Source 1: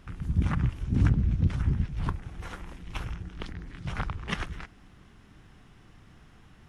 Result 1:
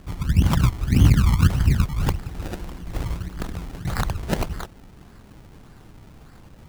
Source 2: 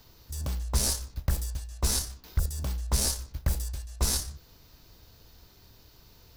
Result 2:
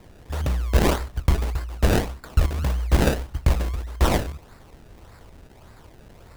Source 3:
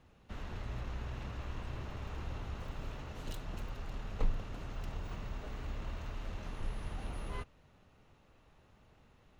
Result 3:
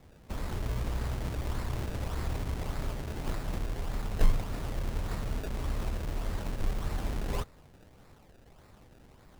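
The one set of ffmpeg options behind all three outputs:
-af "acrusher=samples=28:mix=1:aa=0.000001:lfo=1:lforange=28:lforate=1.7,volume=2.51"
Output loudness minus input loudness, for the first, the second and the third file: +8.0 LU, +6.5 LU, +8.0 LU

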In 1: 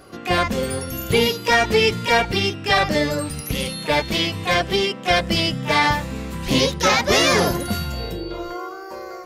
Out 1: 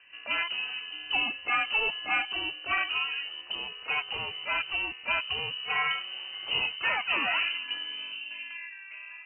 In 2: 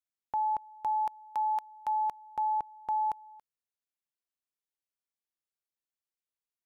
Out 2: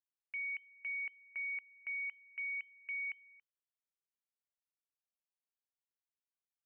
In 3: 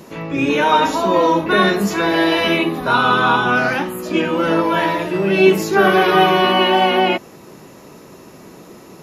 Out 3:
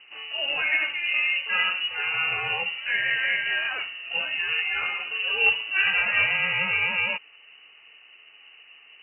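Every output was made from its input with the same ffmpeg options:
-af "aeval=exprs='0.891*(cos(1*acos(clip(val(0)/0.891,-1,1)))-cos(1*PI/2))+0.126*(cos(3*acos(clip(val(0)/0.891,-1,1)))-cos(3*PI/2))+0.0224*(cos(5*acos(clip(val(0)/0.891,-1,1)))-cos(5*PI/2))':c=same,lowpass=f=2600:t=q:w=0.5098,lowpass=f=2600:t=q:w=0.6013,lowpass=f=2600:t=q:w=0.9,lowpass=f=2600:t=q:w=2.563,afreqshift=-3100,volume=0.422"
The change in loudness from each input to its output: -9.5 LU, -7.5 LU, -8.0 LU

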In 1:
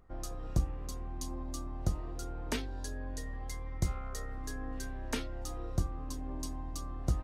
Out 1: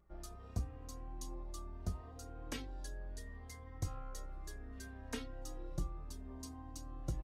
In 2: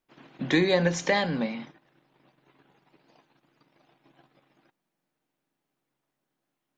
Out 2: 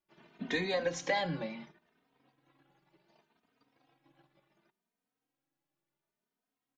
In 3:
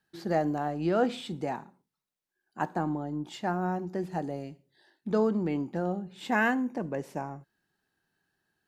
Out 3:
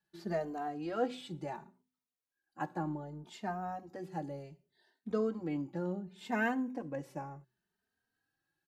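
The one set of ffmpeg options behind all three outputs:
-filter_complex "[0:a]bandreject=f=126.7:t=h:w=4,bandreject=f=253.4:t=h:w=4,bandreject=f=380.1:t=h:w=4,asplit=2[s0][s1];[s1]adelay=3,afreqshift=0.68[s2];[s0][s2]amix=inputs=2:normalize=1,volume=0.596"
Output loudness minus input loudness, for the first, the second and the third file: -7.5 LU, -8.0 LU, -7.5 LU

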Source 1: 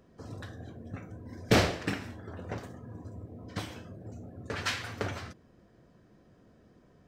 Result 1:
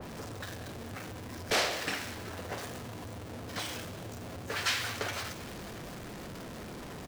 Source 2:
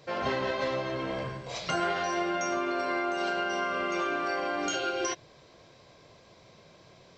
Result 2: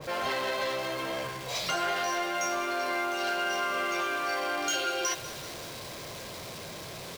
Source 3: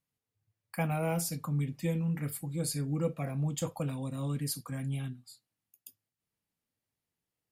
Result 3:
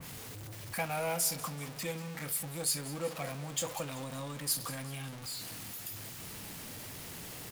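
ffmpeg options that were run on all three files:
-filter_complex "[0:a]aeval=exprs='val(0)+0.5*0.0133*sgn(val(0))':c=same,acrossover=split=440[s0][s1];[s0]acompressor=threshold=0.00708:ratio=6[s2];[s2][s1]amix=inputs=2:normalize=0,asoftclip=type=tanh:threshold=0.075,aecho=1:1:191|382|573|764|955:0.158|0.0872|0.0479|0.0264|0.0145,adynamicequalizer=threshold=0.00501:dfrequency=2300:dqfactor=0.7:tfrequency=2300:tqfactor=0.7:attack=5:release=100:ratio=0.375:range=2:mode=boostabove:tftype=highshelf"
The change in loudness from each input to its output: -1.5 LU, -0.5 LU, -2.5 LU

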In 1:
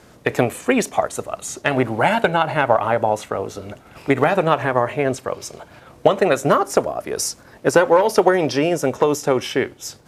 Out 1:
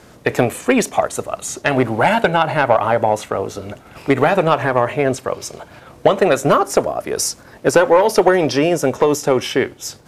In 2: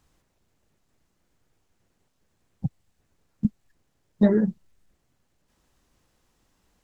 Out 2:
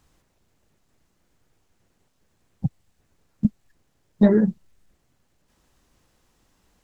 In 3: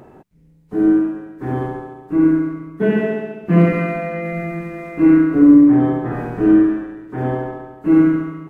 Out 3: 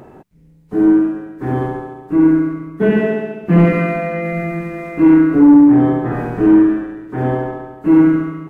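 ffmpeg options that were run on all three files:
-af "asoftclip=type=tanh:threshold=0.562,volume=1.5"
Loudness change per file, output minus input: +2.5 LU, +3.0 LU, +2.0 LU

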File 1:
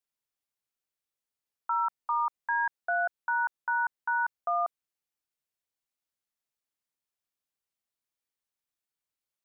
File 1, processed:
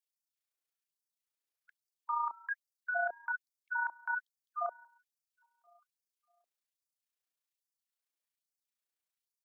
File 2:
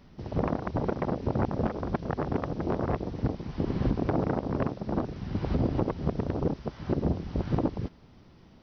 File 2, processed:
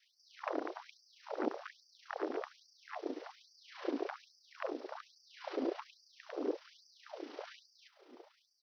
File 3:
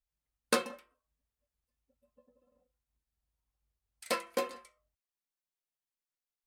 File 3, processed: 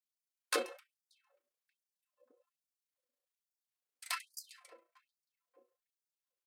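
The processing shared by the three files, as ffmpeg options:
-filter_complex "[0:a]asplit=2[s0][s1];[s1]adelay=583,lowpass=f=970:p=1,volume=0.1,asplit=2[s2][s3];[s3]adelay=583,lowpass=f=970:p=1,volume=0.37,asplit=2[s4][s5];[s5]adelay=583,lowpass=f=970:p=1,volume=0.37[s6];[s2][s4][s6]amix=inputs=3:normalize=0[s7];[s0][s7]amix=inputs=2:normalize=0,tremolo=f=29:d=0.462,adynamicequalizer=threshold=0.00562:dfrequency=870:dqfactor=1.3:tfrequency=870:tqfactor=1.3:attack=5:release=100:ratio=0.375:range=2:mode=cutabove:tftype=bell,acrossover=split=850[s8][s9];[s8]adelay=30[s10];[s10][s9]amix=inputs=2:normalize=0,afftfilt=real='re*gte(b*sr/1024,250*pow(4600/250,0.5+0.5*sin(2*PI*1.2*pts/sr)))':imag='im*gte(b*sr/1024,250*pow(4600/250,0.5+0.5*sin(2*PI*1.2*pts/sr)))':win_size=1024:overlap=0.75"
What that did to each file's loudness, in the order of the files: -7.0 LU, -12.0 LU, -4.5 LU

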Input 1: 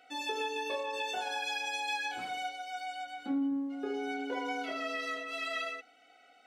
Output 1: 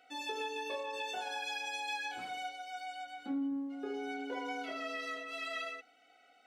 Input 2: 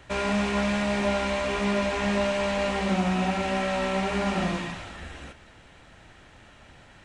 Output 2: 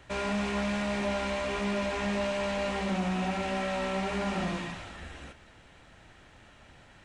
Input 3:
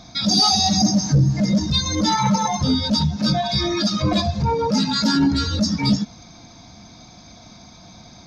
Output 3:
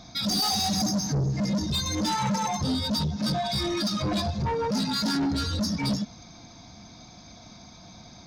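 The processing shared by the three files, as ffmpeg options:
-af "asoftclip=type=tanh:threshold=0.112,volume=0.668"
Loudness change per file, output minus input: -3.5 LU, -5.0 LU, -7.5 LU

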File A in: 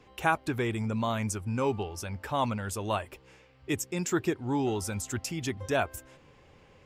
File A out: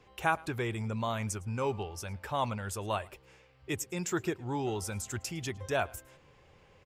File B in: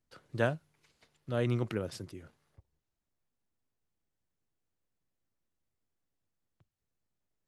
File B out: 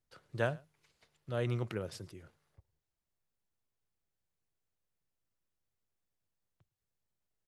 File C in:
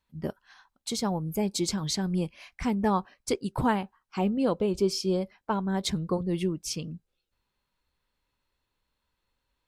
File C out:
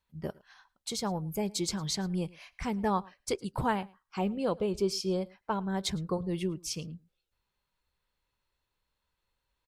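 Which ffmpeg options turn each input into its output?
-af "equalizer=f=260:w=2.5:g=-6,aecho=1:1:109:0.0631,volume=0.75"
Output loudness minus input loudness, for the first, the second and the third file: -3.5 LU, -3.5 LU, -4.0 LU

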